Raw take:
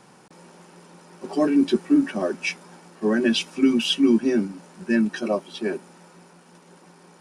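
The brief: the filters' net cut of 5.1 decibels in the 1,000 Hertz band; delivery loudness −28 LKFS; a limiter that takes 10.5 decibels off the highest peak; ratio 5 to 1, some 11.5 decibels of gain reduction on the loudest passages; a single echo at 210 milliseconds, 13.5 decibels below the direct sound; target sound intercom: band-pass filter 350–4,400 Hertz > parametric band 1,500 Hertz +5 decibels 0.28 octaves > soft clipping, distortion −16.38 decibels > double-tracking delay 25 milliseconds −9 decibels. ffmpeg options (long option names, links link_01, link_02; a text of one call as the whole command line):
ffmpeg -i in.wav -filter_complex "[0:a]equalizer=frequency=1000:width_type=o:gain=-7.5,acompressor=threshold=-27dB:ratio=5,alimiter=level_in=4.5dB:limit=-24dB:level=0:latency=1,volume=-4.5dB,highpass=350,lowpass=4400,equalizer=frequency=1500:width_type=o:width=0.28:gain=5,aecho=1:1:210:0.211,asoftclip=threshold=-35dB,asplit=2[link_01][link_02];[link_02]adelay=25,volume=-9dB[link_03];[link_01][link_03]amix=inputs=2:normalize=0,volume=15dB" out.wav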